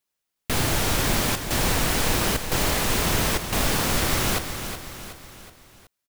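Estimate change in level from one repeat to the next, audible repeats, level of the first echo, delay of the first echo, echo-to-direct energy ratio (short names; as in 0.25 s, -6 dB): -6.0 dB, 4, -9.0 dB, 0.371 s, -8.0 dB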